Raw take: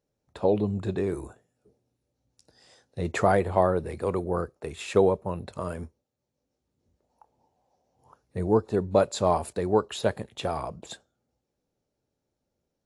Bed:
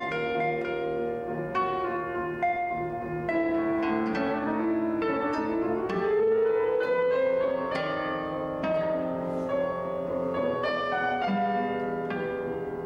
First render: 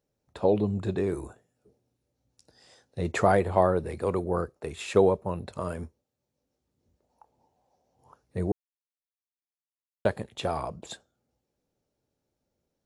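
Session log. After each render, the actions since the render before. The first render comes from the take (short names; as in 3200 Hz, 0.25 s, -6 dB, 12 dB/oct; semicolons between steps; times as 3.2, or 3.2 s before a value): 8.52–10.05 mute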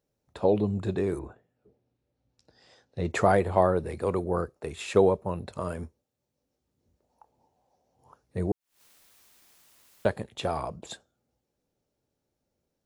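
1.18–3.09 LPF 2500 Hz -> 6100 Hz; 8.45–10.08 upward compressor, threshold -31 dBFS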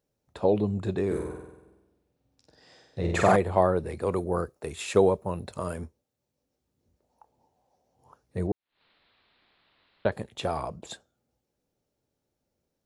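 1.06–3.36 flutter echo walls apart 8.1 m, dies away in 0.97 s; 4.12–5.79 high shelf 7000 Hz +8 dB; 8.47–10.12 elliptic low-pass 4100 Hz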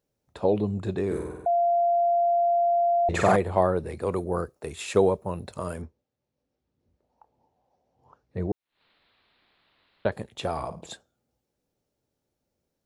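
1.46–3.09 bleep 691 Hz -19 dBFS; 5.82–8.5 air absorption 130 m; 10.52–10.92 flutter echo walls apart 9.4 m, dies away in 0.29 s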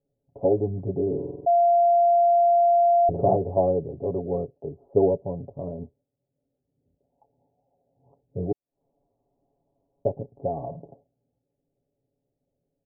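steep low-pass 760 Hz 48 dB/oct; comb 7.2 ms, depth 75%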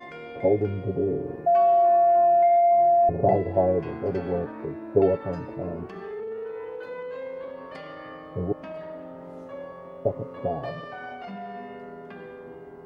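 add bed -10.5 dB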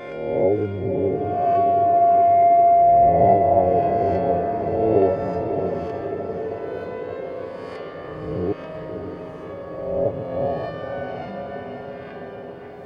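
spectral swells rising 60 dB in 1.26 s; diffused feedback echo 0.596 s, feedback 66%, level -7 dB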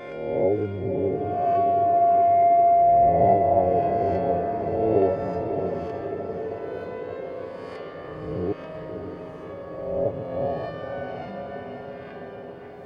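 gain -3 dB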